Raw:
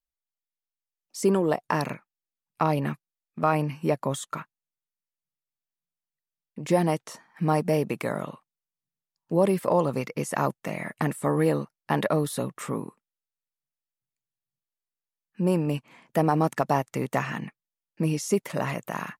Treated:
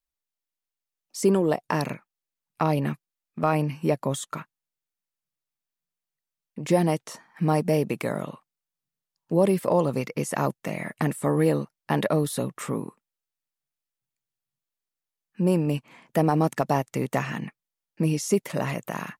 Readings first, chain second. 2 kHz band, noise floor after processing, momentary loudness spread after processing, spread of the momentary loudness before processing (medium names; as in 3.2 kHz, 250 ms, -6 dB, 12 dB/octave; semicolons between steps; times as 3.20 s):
-0.5 dB, under -85 dBFS, 12 LU, 11 LU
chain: dynamic bell 1.2 kHz, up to -4 dB, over -38 dBFS, Q 0.88; trim +2 dB